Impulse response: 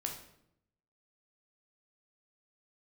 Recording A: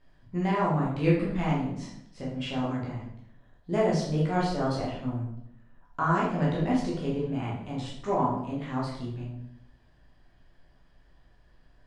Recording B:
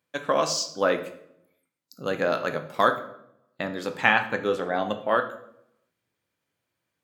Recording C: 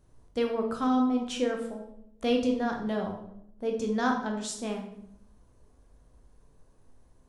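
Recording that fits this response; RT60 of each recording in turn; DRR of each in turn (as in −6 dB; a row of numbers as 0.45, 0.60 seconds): C; 0.75, 0.75, 0.75 seconds; −5.5, 7.5, 1.5 decibels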